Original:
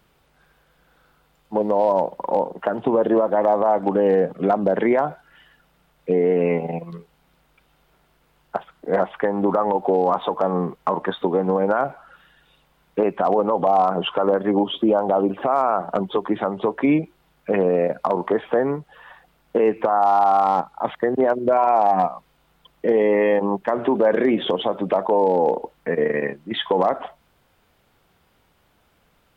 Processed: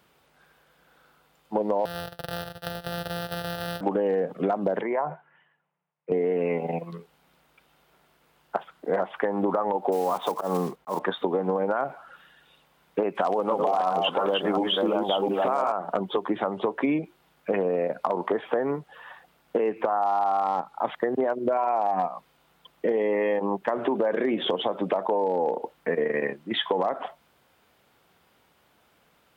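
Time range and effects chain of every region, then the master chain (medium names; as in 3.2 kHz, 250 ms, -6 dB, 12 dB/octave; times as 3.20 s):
1.85–3.81 s: sorted samples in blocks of 256 samples + compression, threshold -23 dBFS + static phaser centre 1.5 kHz, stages 8
4.81–6.12 s: compression 2:1, threshold -26 dBFS + cabinet simulation 160–2400 Hz, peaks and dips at 160 Hz +8 dB, 270 Hz -9 dB, 970 Hz +6 dB, 1.4 kHz -4 dB + three bands expanded up and down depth 70%
9.92–11.00 s: block-companded coder 5-bit + slow attack 114 ms + tape noise reduction on one side only decoder only
13.15–15.72 s: chunks repeated in reverse 356 ms, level -2.5 dB + treble shelf 2.5 kHz +12 dB
whole clip: high-pass 200 Hz 6 dB/octave; compression, threshold -21 dBFS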